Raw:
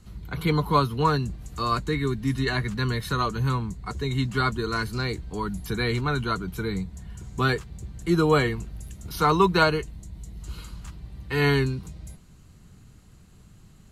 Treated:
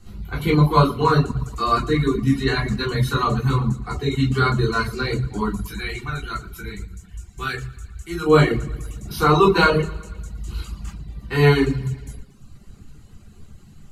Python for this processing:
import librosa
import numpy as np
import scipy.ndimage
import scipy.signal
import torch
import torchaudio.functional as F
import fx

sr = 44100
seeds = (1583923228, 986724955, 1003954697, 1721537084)

y = fx.graphic_eq(x, sr, hz=(125, 250, 500, 1000, 4000), db=(-9, -12, -11, -8, -5), at=(5.6, 8.26), fade=0.02)
y = fx.echo_feedback(y, sr, ms=116, feedback_pct=56, wet_db=-11)
y = fx.room_shoebox(y, sr, seeds[0], volume_m3=320.0, walls='furnished', distance_m=3.6)
y = fx.dereverb_blind(y, sr, rt60_s=0.75)
y = y * 10.0 ** (-1.0 / 20.0)